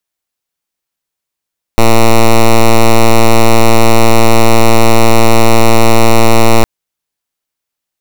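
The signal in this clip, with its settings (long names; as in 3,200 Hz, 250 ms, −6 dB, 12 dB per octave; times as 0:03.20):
pulse wave 114 Hz, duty 7% −3.5 dBFS 4.86 s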